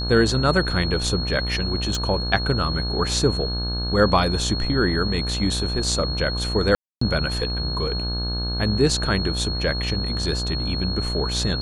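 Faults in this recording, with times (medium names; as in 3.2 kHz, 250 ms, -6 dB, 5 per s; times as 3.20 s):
buzz 60 Hz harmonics 28 -27 dBFS
whine 4.3 kHz -28 dBFS
1.95 s: pop
6.75–7.01 s: dropout 264 ms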